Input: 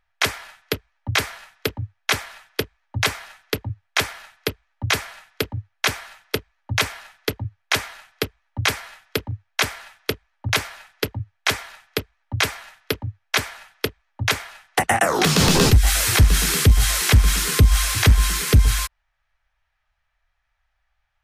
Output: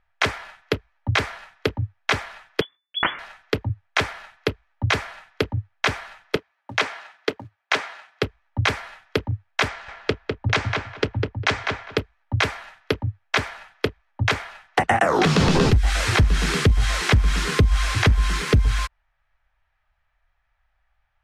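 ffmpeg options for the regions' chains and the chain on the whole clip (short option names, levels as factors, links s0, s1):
-filter_complex "[0:a]asettb=1/sr,asplit=3[s0][s1][s2];[s0]atrim=end=2.614[s3];[s1]atrim=start=2.61:end=3.19,asetpts=PTS-STARTPTS,afade=t=in:d=0.004:c=qsin,afade=t=out:st=0.576:d=0.004:c=qsin,agate=range=0.0224:threshold=0.00112:ratio=3:release=100:detection=peak,lowpass=f=3000:t=q:w=0.5098,lowpass=f=3000:t=q:w=0.6013,lowpass=f=3000:t=q:w=0.9,lowpass=f=3000:t=q:w=2.563,afreqshift=-3500,bandreject=f=2600:w=6.5[s4];[s2]atrim=start=3.186[s5];[s3][s4]acrossfade=d=0.004:c1=hsin:c2=qsin[s6];[s6][s5]acrossfade=d=0.004:c1=qsin:c2=hsin,asettb=1/sr,asplit=3[s7][s8][s9];[s7]atrim=end=6.364[s10];[s8]atrim=start=6.36:end=8.23,asetpts=PTS-STARTPTS,afade=t=in:d=0.004:c=qsin,afade=t=out:st=1.866:d=0.004:c=qsin,highpass=300,lowpass=8000,acrusher=bits=5:mode=log:mix=0:aa=0.000001[s11];[s9]atrim=start=8.226[s12];[s10][s11]acrossfade=d=0.004:c1=hsin:c2=qsin[s13];[s13][s12]acrossfade=d=0.004:c1=qsin:c2=hsin,asettb=1/sr,asplit=3[s14][s15][s16];[s14]atrim=end=9.684[s17];[s15]atrim=start=9.68:end=11.98,asetpts=PTS-STARTPTS,afade=t=in:d=0.004:c=qsin,afade=t=out:st=2.296:d=0.004:c=qsin,lowpass=f=7600:w=0.5412,lowpass=f=7600:w=1.3066,asplit=2[s18][s19];[s19]adelay=202,lowpass=f=3000:p=1,volume=0.631,asplit=2[s20][s21];[s21]adelay=202,lowpass=f=3000:p=1,volume=0.18,asplit=2[s22][s23];[s23]adelay=202,lowpass=f=3000:p=1,volume=0.18[s24];[s18][s20][s22][s24]amix=inputs=4:normalize=0,atrim=end_sample=101430[s25];[s16]atrim=start=11.976[s26];[s17][s25]acrossfade=d=0.004:c1=hsin:c2=qsin[s27];[s27][s26]acrossfade=d=0.004:c1=qsin:c2=hsin,acrossover=split=10000[s28][s29];[s29]acompressor=threshold=0.0112:ratio=4:attack=1:release=60[s30];[s28][s30]amix=inputs=2:normalize=0,aemphasis=mode=reproduction:type=75fm,acompressor=threshold=0.158:ratio=6,volume=1.33"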